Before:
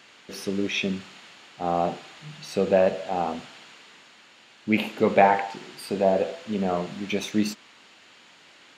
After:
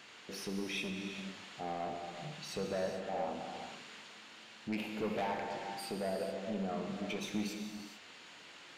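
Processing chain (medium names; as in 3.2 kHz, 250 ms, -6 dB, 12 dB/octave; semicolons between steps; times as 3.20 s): compression 1.5:1, threshold -45 dBFS, peak gain reduction 12 dB; saturation -28.5 dBFS, distortion -11 dB; gated-style reverb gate 470 ms flat, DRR 3 dB; trim -3 dB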